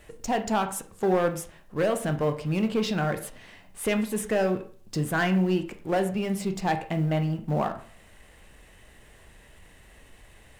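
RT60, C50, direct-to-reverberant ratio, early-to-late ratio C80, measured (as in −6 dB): 0.45 s, 12.0 dB, 7.0 dB, 16.0 dB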